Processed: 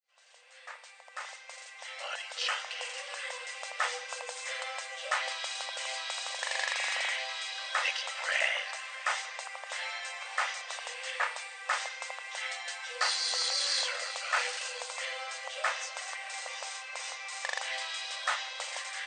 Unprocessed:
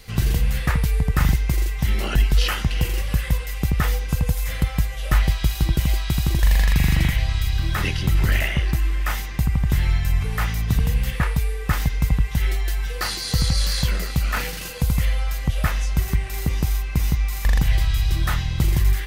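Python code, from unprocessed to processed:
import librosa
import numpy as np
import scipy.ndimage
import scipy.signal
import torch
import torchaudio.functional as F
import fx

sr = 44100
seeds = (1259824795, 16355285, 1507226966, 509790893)

y = fx.fade_in_head(x, sr, length_s=3.87)
y = fx.brickwall_bandpass(y, sr, low_hz=490.0, high_hz=9000.0)
y = y + 10.0 ** (-23.0 / 20.0) * np.pad(y, (int(167 * sr / 1000.0), 0))[:len(y)]
y = y * librosa.db_to_amplitude(-2.5)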